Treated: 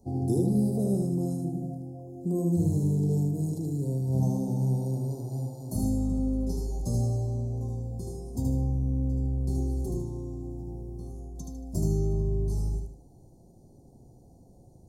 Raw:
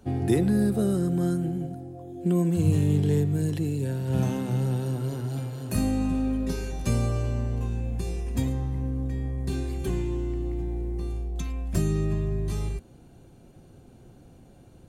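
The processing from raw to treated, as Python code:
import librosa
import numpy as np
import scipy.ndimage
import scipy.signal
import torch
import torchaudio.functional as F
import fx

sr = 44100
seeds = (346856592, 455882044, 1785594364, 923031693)

y = scipy.signal.sosfilt(scipy.signal.cheby1(3, 1.0, [840.0, 5000.0], 'bandstop', fs=sr, output='sos'), x)
y = fx.echo_feedback(y, sr, ms=76, feedback_pct=36, wet_db=-3.0)
y = F.gain(torch.from_numpy(y), -4.5).numpy()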